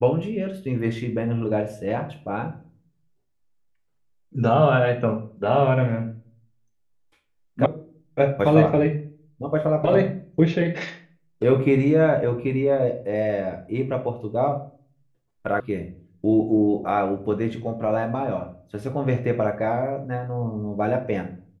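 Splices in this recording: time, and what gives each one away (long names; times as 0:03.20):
0:07.66: cut off before it has died away
0:15.60: cut off before it has died away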